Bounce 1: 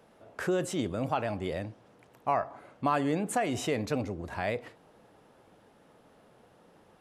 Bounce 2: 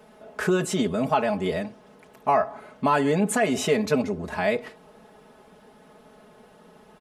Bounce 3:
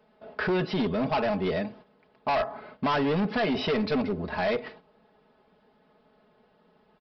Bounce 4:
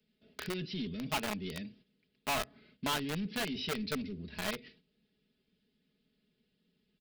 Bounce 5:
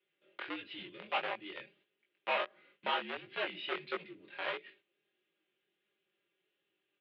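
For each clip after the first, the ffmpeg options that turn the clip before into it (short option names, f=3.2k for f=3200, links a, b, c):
-af "aecho=1:1:4.7:0.92,volume=5dB"
-af "agate=range=-11dB:threshold=-47dB:ratio=16:detection=peak,aresample=11025,volume=22.5dB,asoftclip=hard,volume=-22.5dB,aresample=44100"
-filter_complex "[0:a]acrossover=split=100|370|2400[a][b][c][d];[c]acrusher=bits=3:mix=0:aa=0.000001[e];[d]acontrast=37[f];[a][b][e][f]amix=inputs=4:normalize=0,volume=-9dB"
-af "highpass=f=450:t=q:w=0.5412,highpass=f=450:t=q:w=1.307,lowpass=f=3.3k:t=q:w=0.5176,lowpass=f=3.3k:t=q:w=0.7071,lowpass=f=3.3k:t=q:w=1.932,afreqshift=-63,flanger=delay=18:depth=5.7:speed=1.5,volume=4.5dB"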